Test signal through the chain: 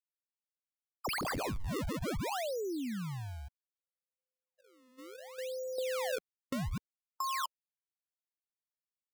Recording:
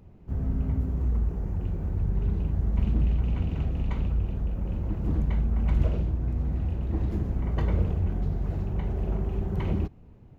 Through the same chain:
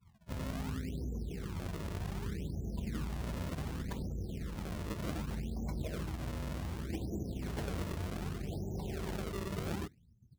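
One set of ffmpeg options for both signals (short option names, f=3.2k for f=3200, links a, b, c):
-af "bandreject=f=1.7k:w=17,afftdn=nr=34:nf=-39,highpass=f=260:p=1,acompressor=threshold=-34dB:ratio=5,acrusher=samples=32:mix=1:aa=0.000001:lfo=1:lforange=51.2:lforate=0.66"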